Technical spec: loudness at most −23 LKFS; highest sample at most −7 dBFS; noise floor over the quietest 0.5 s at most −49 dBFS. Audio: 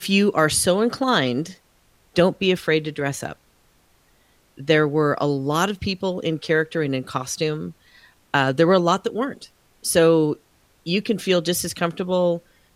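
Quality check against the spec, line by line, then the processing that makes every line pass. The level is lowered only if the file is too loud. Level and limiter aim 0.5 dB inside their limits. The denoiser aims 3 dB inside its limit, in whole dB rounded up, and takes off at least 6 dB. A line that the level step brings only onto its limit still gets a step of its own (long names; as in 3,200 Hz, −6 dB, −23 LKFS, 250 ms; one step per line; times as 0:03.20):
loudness −21.0 LKFS: out of spec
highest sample −4.5 dBFS: out of spec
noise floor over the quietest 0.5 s −59 dBFS: in spec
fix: level −2.5 dB
brickwall limiter −7.5 dBFS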